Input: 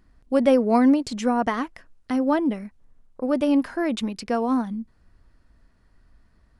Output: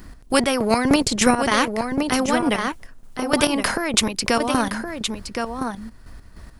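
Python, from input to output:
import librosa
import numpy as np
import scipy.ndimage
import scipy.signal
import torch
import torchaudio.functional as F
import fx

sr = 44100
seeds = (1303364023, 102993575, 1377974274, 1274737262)

p1 = fx.level_steps(x, sr, step_db=10)
p2 = x + F.gain(torch.from_numpy(p1), -1.0).numpy()
p3 = fx.low_shelf(p2, sr, hz=420.0, db=10.5, at=(0.85, 1.34))
p4 = fx.chopper(p3, sr, hz=3.3, depth_pct=65, duty_pct=45)
p5 = fx.high_shelf(p4, sr, hz=6500.0, db=10.5)
p6 = p5 + fx.echo_single(p5, sr, ms=1068, db=-11.0, dry=0)
p7 = fx.spectral_comp(p6, sr, ratio=2.0)
y = F.gain(torch.from_numpy(p7), -2.0).numpy()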